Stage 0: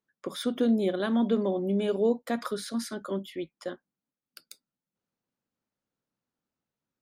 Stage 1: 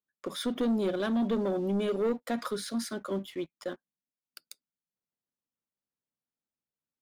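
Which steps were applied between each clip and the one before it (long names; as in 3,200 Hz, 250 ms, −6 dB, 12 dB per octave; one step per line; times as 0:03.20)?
leveller curve on the samples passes 2
level −7.5 dB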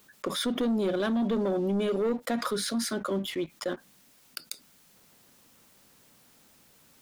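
envelope flattener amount 50%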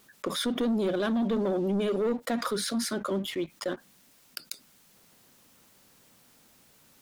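pitch vibrato 14 Hz 45 cents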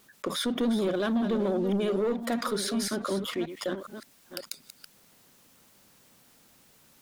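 delay that plays each chunk backwards 576 ms, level −10.5 dB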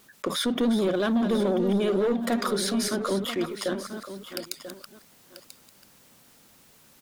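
single-tap delay 989 ms −12.5 dB
level +3 dB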